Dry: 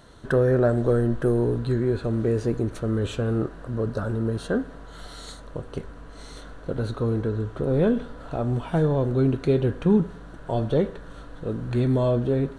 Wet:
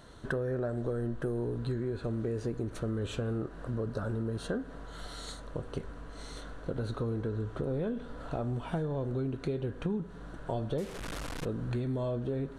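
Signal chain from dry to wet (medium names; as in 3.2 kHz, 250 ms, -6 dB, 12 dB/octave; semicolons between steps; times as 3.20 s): 10.78–11.45 s: one-bit delta coder 64 kbps, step -29.5 dBFS; compression 6:1, threshold -28 dBFS, peak gain reduction 13 dB; trim -2.5 dB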